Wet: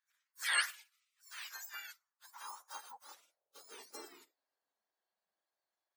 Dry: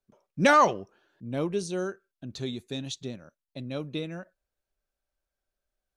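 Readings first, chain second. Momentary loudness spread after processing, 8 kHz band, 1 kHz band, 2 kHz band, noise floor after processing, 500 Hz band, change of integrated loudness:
24 LU, -2.5 dB, -20.5 dB, -7.5 dB, under -85 dBFS, -32.0 dB, -12.0 dB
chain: spectrum inverted on a logarithmic axis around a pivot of 1.6 kHz; spectral gate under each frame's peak -20 dB weak; high-pass sweep 1.6 kHz -> 130 Hz, 1.70–5.66 s; trim +2.5 dB

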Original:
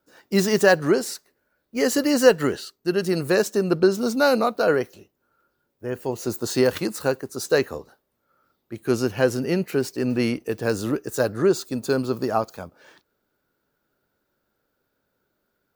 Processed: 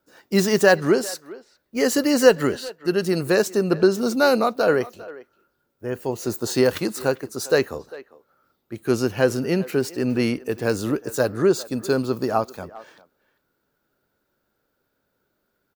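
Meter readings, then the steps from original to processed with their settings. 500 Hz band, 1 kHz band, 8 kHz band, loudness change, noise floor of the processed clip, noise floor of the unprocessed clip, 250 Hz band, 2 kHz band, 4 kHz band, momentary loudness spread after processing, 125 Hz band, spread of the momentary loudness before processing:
+1.0 dB, +1.0 dB, +1.0 dB, +1.0 dB, -74 dBFS, -75 dBFS, +1.0 dB, +1.0 dB, +1.0 dB, 15 LU, +1.0 dB, 14 LU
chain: speakerphone echo 400 ms, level -18 dB; trim +1 dB

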